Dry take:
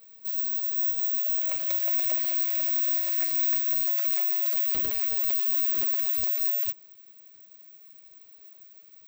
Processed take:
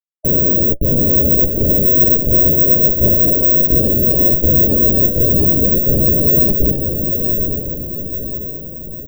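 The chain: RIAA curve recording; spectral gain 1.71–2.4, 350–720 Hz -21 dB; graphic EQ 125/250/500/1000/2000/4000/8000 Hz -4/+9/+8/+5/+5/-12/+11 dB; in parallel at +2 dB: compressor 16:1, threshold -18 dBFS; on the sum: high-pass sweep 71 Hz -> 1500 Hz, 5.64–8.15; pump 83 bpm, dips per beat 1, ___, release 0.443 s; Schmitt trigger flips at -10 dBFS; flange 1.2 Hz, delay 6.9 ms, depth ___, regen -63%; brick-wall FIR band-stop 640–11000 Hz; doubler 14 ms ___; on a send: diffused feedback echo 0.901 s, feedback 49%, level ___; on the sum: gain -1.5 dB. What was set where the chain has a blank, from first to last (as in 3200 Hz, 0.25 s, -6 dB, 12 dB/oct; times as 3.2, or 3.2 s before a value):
-24 dB, 5.6 ms, -10 dB, -4.5 dB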